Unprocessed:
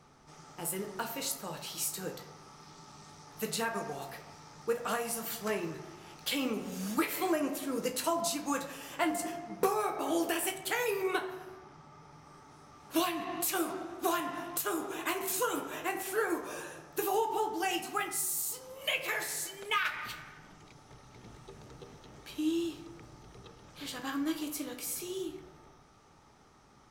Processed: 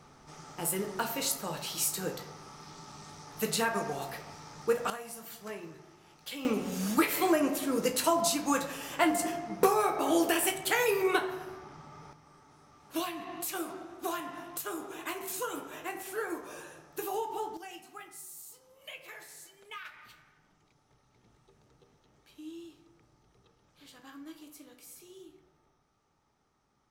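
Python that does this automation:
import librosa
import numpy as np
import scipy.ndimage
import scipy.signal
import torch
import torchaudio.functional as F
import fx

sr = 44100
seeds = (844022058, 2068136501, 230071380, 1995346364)

y = fx.gain(x, sr, db=fx.steps((0.0, 4.0), (4.9, -8.0), (6.45, 4.5), (12.13, -4.0), (17.57, -13.5)))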